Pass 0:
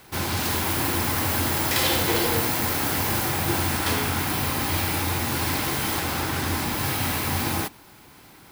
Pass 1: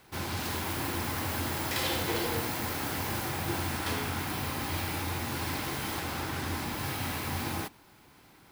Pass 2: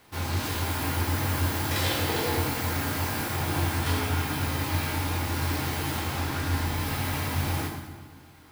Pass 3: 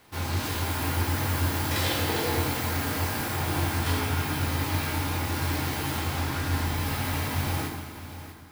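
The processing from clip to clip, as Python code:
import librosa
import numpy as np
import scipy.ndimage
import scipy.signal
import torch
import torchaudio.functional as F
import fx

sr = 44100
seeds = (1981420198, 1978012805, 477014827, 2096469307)

y1 = fx.high_shelf(x, sr, hz=6700.0, db=-4.5)
y1 = F.gain(torch.from_numpy(y1), -7.5).numpy()
y2 = fx.rev_fdn(y1, sr, rt60_s=1.4, lf_ratio=1.35, hf_ratio=0.8, size_ms=66.0, drr_db=-0.5)
y3 = y2 + 10.0 ** (-13.0 / 20.0) * np.pad(y2, (int(645 * sr / 1000.0), 0))[:len(y2)]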